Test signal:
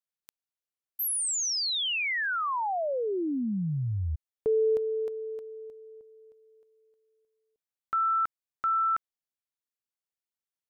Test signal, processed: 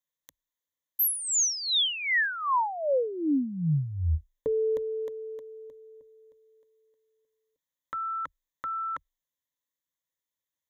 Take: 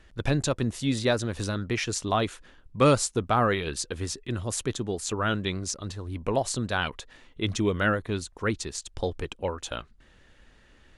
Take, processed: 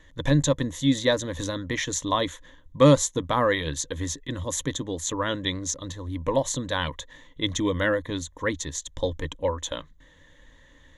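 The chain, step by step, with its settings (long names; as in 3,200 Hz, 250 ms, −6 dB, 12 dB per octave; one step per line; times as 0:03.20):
EQ curve with evenly spaced ripples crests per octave 1.1, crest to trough 13 dB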